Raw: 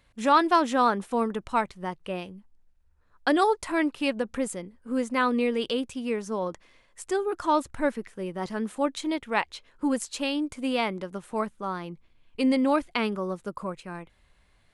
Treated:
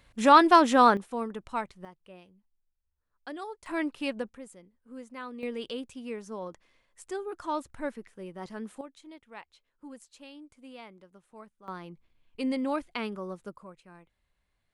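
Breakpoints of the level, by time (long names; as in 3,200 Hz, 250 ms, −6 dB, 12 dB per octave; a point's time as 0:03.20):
+3 dB
from 0:00.97 −7 dB
from 0:01.85 −17.5 dB
from 0:03.66 −5.5 dB
from 0:04.29 −16.5 dB
from 0:05.43 −8.5 dB
from 0:08.81 −20 dB
from 0:11.68 −7 dB
from 0:13.57 −14.5 dB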